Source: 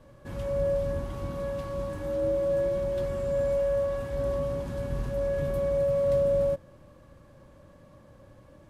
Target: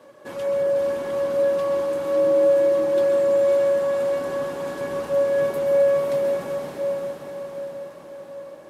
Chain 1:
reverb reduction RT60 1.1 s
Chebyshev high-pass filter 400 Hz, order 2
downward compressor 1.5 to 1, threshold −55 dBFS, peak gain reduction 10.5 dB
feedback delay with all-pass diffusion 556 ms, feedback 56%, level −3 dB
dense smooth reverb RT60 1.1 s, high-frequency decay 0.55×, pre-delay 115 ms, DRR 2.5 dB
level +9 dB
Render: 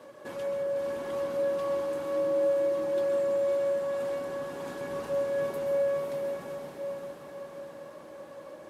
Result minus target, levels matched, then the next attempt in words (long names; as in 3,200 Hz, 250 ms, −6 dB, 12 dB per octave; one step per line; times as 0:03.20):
downward compressor: peak gain reduction +10.5 dB
reverb reduction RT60 1.1 s
Chebyshev high-pass filter 400 Hz, order 2
feedback delay with all-pass diffusion 556 ms, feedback 56%, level −3 dB
dense smooth reverb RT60 1.1 s, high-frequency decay 0.55×, pre-delay 115 ms, DRR 2.5 dB
level +9 dB